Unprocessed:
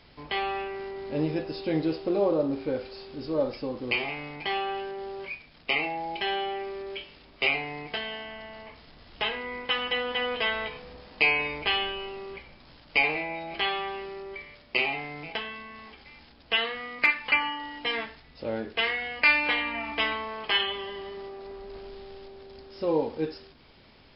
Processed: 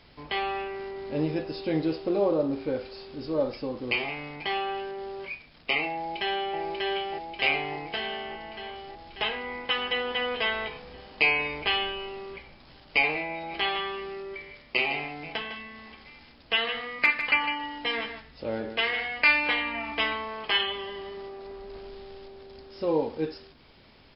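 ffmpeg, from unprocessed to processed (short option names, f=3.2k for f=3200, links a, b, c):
-filter_complex "[0:a]asplit=2[a][b];[b]afade=t=in:st=5.94:d=0.01,afade=t=out:st=6.59:d=0.01,aecho=0:1:590|1180|1770|2360|2950|3540|4130|4720|5310|5900|6490|7080:0.794328|0.55603|0.389221|0.272455|0.190718|0.133503|0.0934519|0.0654163|0.0457914|0.032054|0.0224378|0.0157065[c];[a][c]amix=inputs=2:normalize=0,asettb=1/sr,asplit=3[d][e][f];[d]atrim=end=13.284[g];[e]atrim=start=13.28:end=19.22,asetpts=PTS-STARTPTS,afade=t=in:d=0.004:c=qsin,afade=t=out:st=5.936:d=0.004:c=qsin,aecho=1:1:154:0.335,atrim=end_sample=261954[h];[f]atrim=start=19.216[i];[g][h]acrossfade=d=0.004:c1=hsin:c2=qsin[j];[j][i]acrossfade=d=0.004:c1=qsin:c2=hsin"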